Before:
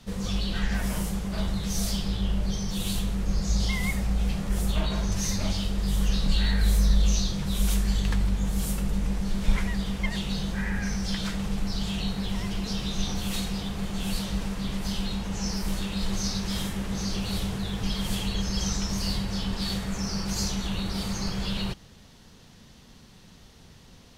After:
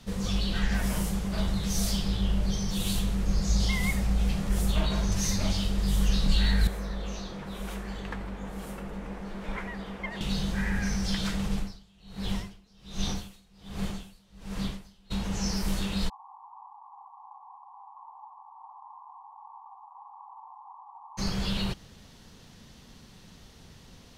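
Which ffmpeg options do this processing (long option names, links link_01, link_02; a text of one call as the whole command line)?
ffmpeg -i in.wav -filter_complex "[0:a]asettb=1/sr,asplit=3[link_01][link_02][link_03];[link_01]atrim=end=6.674[link_04];[link_02]atrim=start=6.67:end=10.21,asetpts=PTS-STARTPTS,afade=type=in:duration=0.004:curve=qsin,afade=type=out:start_time=3.536:duration=0.004:curve=qsin,acrossover=split=260 2300:gain=0.178 1 0.158[link_05][link_06][link_07];[link_05][link_06][link_07]amix=inputs=3:normalize=0[link_08];[link_03]atrim=start=10.206[link_09];[link_04][link_08]acrossfade=duration=0.004:curve1=hsin:curve2=qsin[link_10];[link_10][link_09]acrossfade=duration=0.004:curve1=qsin:curve2=hsin,asplit=3[link_11][link_12][link_13];[link_11]afade=type=out:start_time=11.47:duration=0.02[link_14];[link_12]aeval=exprs='val(0)*pow(10,-31*(0.5-0.5*cos(2*PI*1.3*n/s))/20)':channel_layout=same,afade=type=in:start_time=11.47:duration=0.02,afade=type=out:start_time=15.1:duration=0.02[link_15];[link_13]afade=type=in:start_time=15.1:duration=0.02[link_16];[link_14][link_15][link_16]amix=inputs=3:normalize=0,asplit=3[link_17][link_18][link_19];[link_17]afade=type=out:start_time=16.08:duration=0.02[link_20];[link_18]asuperpass=centerf=930:order=12:qfactor=2.6,afade=type=in:start_time=16.08:duration=0.02,afade=type=out:start_time=21.17:duration=0.02[link_21];[link_19]afade=type=in:start_time=21.17:duration=0.02[link_22];[link_20][link_21][link_22]amix=inputs=3:normalize=0" out.wav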